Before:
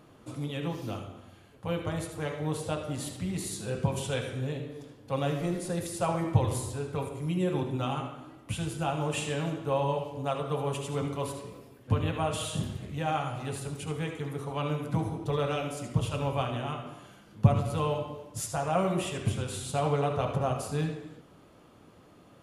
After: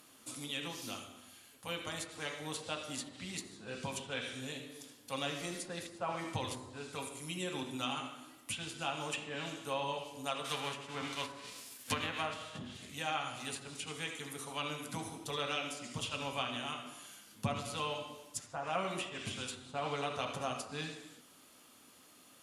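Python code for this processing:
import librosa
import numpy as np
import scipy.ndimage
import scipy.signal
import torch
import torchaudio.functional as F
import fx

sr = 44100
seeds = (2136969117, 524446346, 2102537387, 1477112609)

y = fx.envelope_flatten(x, sr, power=0.6, at=(10.44, 12.57), fade=0.02)
y = librosa.effects.preemphasis(y, coef=0.97, zi=[0.0])
y = fx.env_lowpass_down(y, sr, base_hz=1400.0, full_db=-37.5)
y = fx.peak_eq(y, sr, hz=250.0, db=10.5, octaves=0.49)
y = y * 10.0 ** (11.0 / 20.0)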